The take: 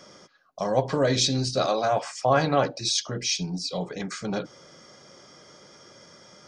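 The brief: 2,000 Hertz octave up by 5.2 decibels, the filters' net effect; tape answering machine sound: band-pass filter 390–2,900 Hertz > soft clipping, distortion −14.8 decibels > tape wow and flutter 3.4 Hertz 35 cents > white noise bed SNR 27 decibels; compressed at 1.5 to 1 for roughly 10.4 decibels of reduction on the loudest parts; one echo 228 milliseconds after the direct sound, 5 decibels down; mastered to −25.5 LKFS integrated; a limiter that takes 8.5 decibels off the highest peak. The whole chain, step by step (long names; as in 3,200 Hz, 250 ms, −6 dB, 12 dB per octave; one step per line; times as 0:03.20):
parametric band 2,000 Hz +8 dB
downward compressor 1.5 to 1, threshold −45 dBFS
brickwall limiter −25 dBFS
band-pass filter 390–2,900 Hz
single-tap delay 228 ms −5 dB
soft clipping −31.5 dBFS
tape wow and flutter 3.4 Hz 35 cents
white noise bed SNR 27 dB
level +15.5 dB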